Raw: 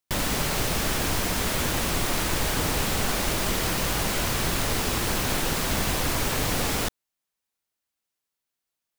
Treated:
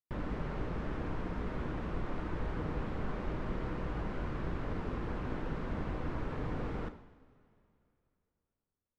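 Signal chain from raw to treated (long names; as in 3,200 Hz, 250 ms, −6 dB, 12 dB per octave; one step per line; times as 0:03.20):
low-pass filter 1,100 Hz 12 dB per octave
parametric band 720 Hz −6 dB 0.78 octaves
coupled-rooms reverb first 0.69 s, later 2.9 s, from −15 dB, DRR 8 dB
level −8.5 dB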